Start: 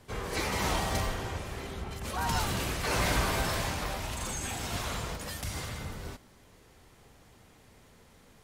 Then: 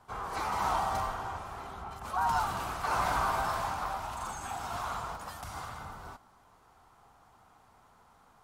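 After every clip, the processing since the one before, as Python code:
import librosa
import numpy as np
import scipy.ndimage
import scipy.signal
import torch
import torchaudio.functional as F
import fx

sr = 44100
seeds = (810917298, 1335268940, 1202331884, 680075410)

y = fx.band_shelf(x, sr, hz=1000.0, db=14.0, octaves=1.3)
y = y * librosa.db_to_amplitude(-9.0)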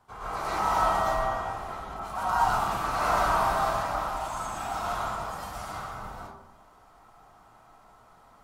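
y = fx.rev_freeverb(x, sr, rt60_s=0.81, hf_ratio=0.35, predelay_ms=80, drr_db=-8.5)
y = y * librosa.db_to_amplitude(-4.0)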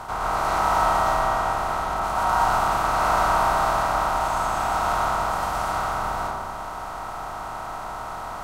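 y = fx.bin_compress(x, sr, power=0.4)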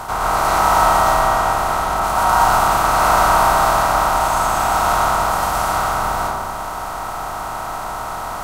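y = fx.high_shelf(x, sr, hz=7600.0, db=9.5)
y = y * librosa.db_to_amplitude(6.5)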